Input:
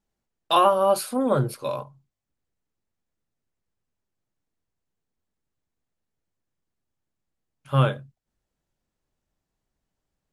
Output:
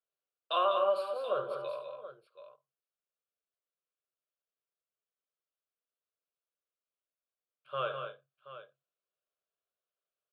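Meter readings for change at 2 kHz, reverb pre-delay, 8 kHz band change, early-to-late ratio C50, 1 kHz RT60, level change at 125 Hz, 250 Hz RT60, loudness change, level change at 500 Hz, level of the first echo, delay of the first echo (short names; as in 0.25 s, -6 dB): -8.5 dB, none, under -25 dB, none, none, -30.5 dB, none, -10.5 dB, -8.0 dB, -11.0 dB, 72 ms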